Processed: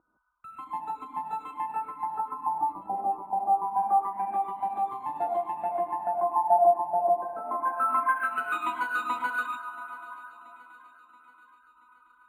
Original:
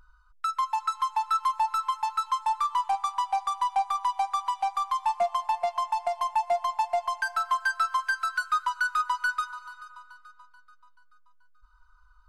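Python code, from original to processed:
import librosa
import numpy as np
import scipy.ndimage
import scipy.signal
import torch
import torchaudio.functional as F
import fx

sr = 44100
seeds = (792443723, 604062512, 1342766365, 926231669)

y = np.minimum(x, 2.0 * 10.0 ** (-24.5 / 20.0) - x)
y = scipy.signal.sosfilt(scipy.signal.butter(2, 190.0, 'highpass', fs=sr, output='sos'), y)
y = fx.peak_eq(y, sr, hz=3800.0, db=4.0, octaves=0.24)
y = fx.filter_lfo_lowpass(y, sr, shape='sine', hz=0.25, low_hz=580.0, high_hz=4300.0, q=2.3)
y = fx.graphic_eq_31(y, sr, hz=(315, 800, 2500, 4000, 6300), db=(10, 8, 6, 6, -10))
y = fx.filter_sweep_lowpass(y, sr, from_hz=620.0, to_hz=1400.0, start_s=6.18, end_s=7.64, q=1.1)
y = fx.echo_feedback(y, sr, ms=679, feedback_pct=56, wet_db=-18.0)
y = fx.rev_gated(y, sr, seeds[0], gate_ms=180, shape='rising', drr_db=-3.5)
y = np.interp(np.arange(len(y)), np.arange(len(y))[::4], y[::4])
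y = F.gain(torch.from_numpy(y), -7.0).numpy()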